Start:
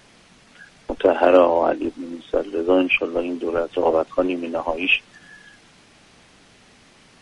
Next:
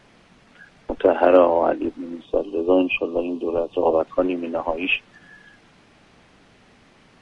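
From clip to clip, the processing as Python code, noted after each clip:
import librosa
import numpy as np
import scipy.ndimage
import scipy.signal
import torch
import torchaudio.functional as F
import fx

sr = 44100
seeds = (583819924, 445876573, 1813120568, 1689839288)

y = fx.spec_box(x, sr, start_s=2.25, length_s=1.75, low_hz=1200.0, high_hz=2400.0, gain_db=-15)
y = fx.high_shelf(y, sr, hz=3900.0, db=-12.0)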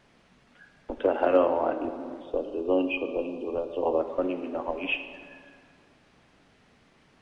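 y = fx.rev_plate(x, sr, seeds[0], rt60_s=2.2, hf_ratio=0.6, predelay_ms=0, drr_db=8.0)
y = y * librosa.db_to_amplitude(-8.0)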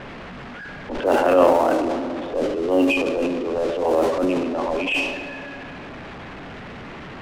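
y = x + 0.5 * 10.0 ** (-36.5 / 20.0) * np.sign(x)
y = fx.env_lowpass(y, sr, base_hz=2000.0, full_db=-20.0)
y = fx.transient(y, sr, attack_db=-8, sustain_db=8)
y = y * librosa.db_to_amplitude(6.5)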